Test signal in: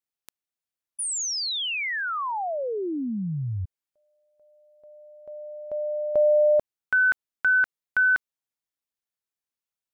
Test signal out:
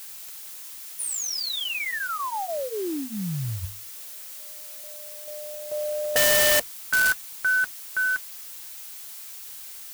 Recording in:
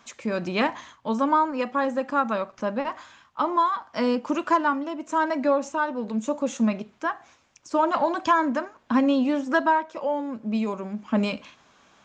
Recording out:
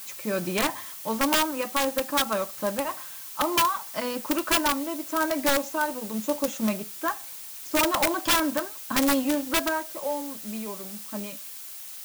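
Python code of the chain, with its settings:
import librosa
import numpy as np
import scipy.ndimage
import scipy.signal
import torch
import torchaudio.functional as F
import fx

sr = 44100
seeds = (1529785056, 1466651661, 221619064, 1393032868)

y = fx.fade_out_tail(x, sr, length_s=2.85)
y = fx.hum_notches(y, sr, base_hz=50, count=2)
y = fx.dmg_noise_colour(y, sr, seeds[0], colour='blue', level_db=-39.0)
y = fx.notch_comb(y, sr, f0_hz=240.0)
y = fx.mod_noise(y, sr, seeds[1], snr_db=18)
y = (np.mod(10.0 ** (15.5 / 20.0) * y + 1.0, 2.0) - 1.0) / 10.0 ** (15.5 / 20.0)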